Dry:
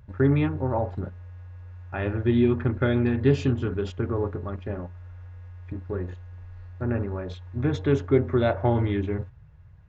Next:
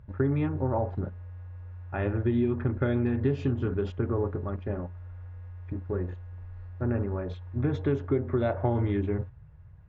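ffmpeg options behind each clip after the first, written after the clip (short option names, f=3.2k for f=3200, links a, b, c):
-af "lowpass=f=1.7k:p=1,acompressor=threshold=-22dB:ratio=6"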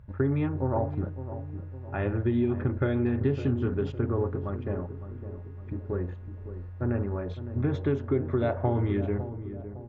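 -filter_complex "[0:a]asplit=2[a][b];[b]adelay=558,lowpass=f=840:p=1,volume=-11dB,asplit=2[c][d];[d]adelay=558,lowpass=f=840:p=1,volume=0.53,asplit=2[e][f];[f]adelay=558,lowpass=f=840:p=1,volume=0.53,asplit=2[g][h];[h]adelay=558,lowpass=f=840:p=1,volume=0.53,asplit=2[i][j];[j]adelay=558,lowpass=f=840:p=1,volume=0.53,asplit=2[k][l];[l]adelay=558,lowpass=f=840:p=1,volume=0.53[m];[a][c][e][g][i][k][m]amix=inputs=7:normalize=0"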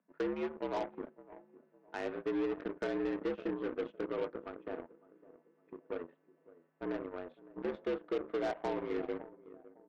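-af "highpass=f=190:t=q:w=0.5412,highpass=f=190:t=q:w=1.307,lowpass=f=3.4k:t=q:w=0.5176,lowpass=f=3.4k:t=q:w=0.7071,lowpass=f=3.4k:t=q:w=1.932,afreqshift=67,aeval=exprs='0.168*(cos(1*acos(clip(val(0)/0.168,-1,1)))-cos(1*PI/2))+0.00473*(cos(3*acos(clip(val(0)/0.168,-1,1)))-cos(3*PI/2))+0.0188*(cos(7*acos(clip(val(0)/0.168,-1,1)))-cos(7*PI/2))':c=same,asoftclip=type=tanh:threshold=-28.5dB"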